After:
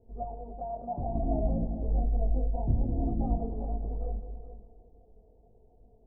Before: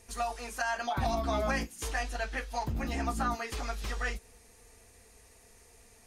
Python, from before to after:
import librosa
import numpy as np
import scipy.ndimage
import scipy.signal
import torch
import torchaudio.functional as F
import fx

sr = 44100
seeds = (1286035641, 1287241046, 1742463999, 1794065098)

y = fx.octave_divider(x, sr, octaves=2, level_db=-5.0)
y = scipy.signal.sosfilt(scipy.signal.butter(8, 740.0, 'lowpass', fs=sr, output='sos'), y)
y = fx.echo_feedback(y, sr, ms=310, feedback_pct=41, wet_db=-16.0)
y = fx.chorus_voices(y, sr, voices=6, hz=0.47, base_ms=23, depth_ms=4.8, mix_pct=45)
y = fx.low_shelf(y, sr, hz=390.0, db=11.5, at=(1.15, 3.51))
y = fx.rider(y, sr, range_db=3, speed_s=0.5)
y = fx.echo_multitap(y, sr, ms=(96, 186, 204, 424), db=(-14.5, -14.0, -19.5, -12.0))